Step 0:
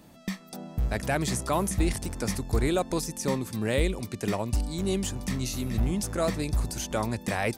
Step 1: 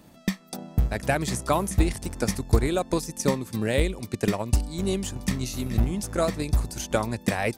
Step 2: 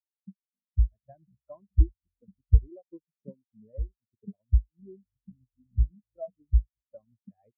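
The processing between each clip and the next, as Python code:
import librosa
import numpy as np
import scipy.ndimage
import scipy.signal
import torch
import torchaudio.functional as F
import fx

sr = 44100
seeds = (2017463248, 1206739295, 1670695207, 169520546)

y1 = fx.transient(x, sr, attack_db=8, sustain_db=-3)
y2 = fx.spectral_expand(y1, sr, expansion=4.0)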